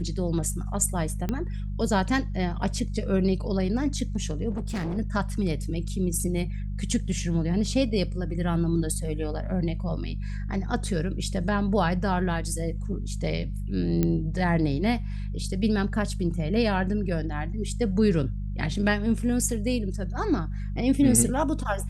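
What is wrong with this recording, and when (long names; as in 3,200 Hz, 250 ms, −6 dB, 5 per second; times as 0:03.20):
mains hum 50 Hz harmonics 4 −31 dBFS
0:01.29: click −15 dBFS
0:04.50–0:04.98: clipping −26.5 dBFS
0:14.03: click −11 dBFS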